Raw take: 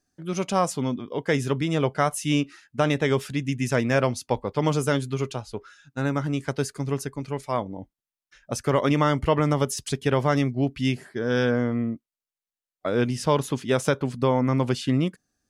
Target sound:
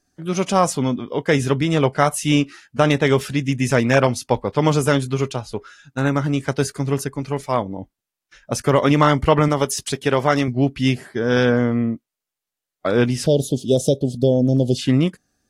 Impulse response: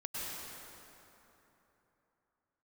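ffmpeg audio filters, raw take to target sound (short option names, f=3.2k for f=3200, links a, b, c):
-filter_complex "[0:a]asettb=1/sr,asplit=3[a][b][c];[a]atrim=end=9.484[d];[b]atrim=start=9.48:end=10.48,asetpts=PTS-STARTPTS,afade=t=in:d=0.004:c=qsin,afade=t=out:st=0.996:d=0.004:c=qsin,lowshelf=f=170:g=-10[e];[c]atrim=start=10.476[f];[d][e]acrossfade=d=0.004:c1=hsin:c2=qsin[g];[g][f]acrossfade=d=0.004:c1=qsin:c2=hsin,asettb=1/sr,asplit=3[h][i][j];[h]atrim=end=13.264[k];[i]atrim=start=13.26:end=14.79,asetpts=PTS-STARTPTS,afade=t=in:d=0.004:c=qsin,afade=t=out:st=1.526:d=0.004:c=qsin,asuperstop=centerf=1500:order=12:qfactor=0.58[l];[j]atrim=start=14.786[m];[k][l]acrossfade=d=0.004:c1=hsin:c2=qsin[n];[n][m]acrossfade=d=0.004:c1=qsin:c2=hsin,volume=6dB" -ar 44100 -c:a aac -b:a 48k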